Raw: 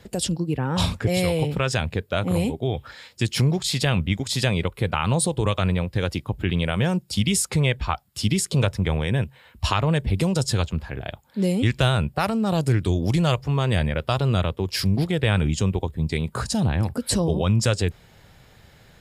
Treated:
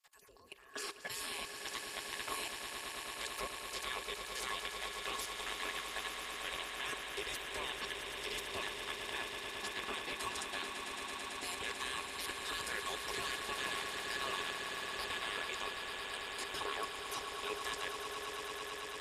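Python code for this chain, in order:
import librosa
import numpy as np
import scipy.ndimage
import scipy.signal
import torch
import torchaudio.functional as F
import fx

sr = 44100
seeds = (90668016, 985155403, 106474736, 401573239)

p1 = fx.spec_gate(x, sr, threshold_db=-25, keep='weak')
p2 = fx.level_steps(p1, sr, step_db=21)
p3 = fx.small_body(p2, sr, hz=(400.0, 1100.0, 1700.0), ring_ms=70, db=13)
p4 = p3 + fx.echo_swell(p3, sr, ms=111, loudest=8, wet_db=-9.5, dry=0)
y = p4 * librosa.db_to_amplitude(-1.5)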